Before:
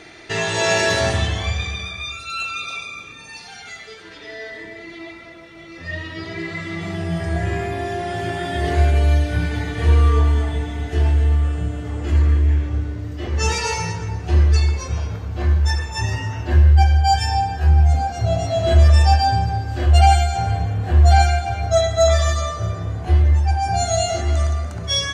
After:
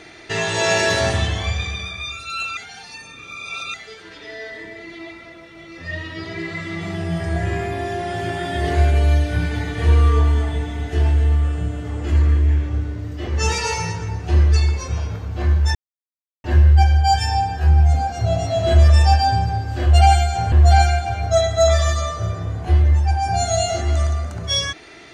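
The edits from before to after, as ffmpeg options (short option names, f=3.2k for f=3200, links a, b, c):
-filter_complex "[0:a]asplit=6[a][b][c][d][e][f];[a]atrim=end=2.572[g];[b]atrim=start=2.568:end=3.742,asetpts=PTS-STARTPTS,areverse[h];[c]atrim=start=3.738:end=15.75,asetpts=PTS-STARTPTS,afade=t=out:st=12.008:d=0.004:c=hsin[i];[d]atrim=start=15.75:end=16.44,asetpts=PTS-STARTPTS,volume=0[j];[e]atrim=start=16.44:end=20.522,asetpts=PTS-STARTPTS,afade=t=in:d=0.004:c=hsin[k];[f]atrim=start=20.918[l];[g][h]acrossfade=d=0.004:c1=hsin:c2=hsin[m];[i][j][k]concat=n=3:v=0:a=1[n];[m][n]acrossfade=d=0.004:c1=hsin:c2=hsin[o];[o][l]acrossfade=d=0.004:c1=hsin:c2=hsin"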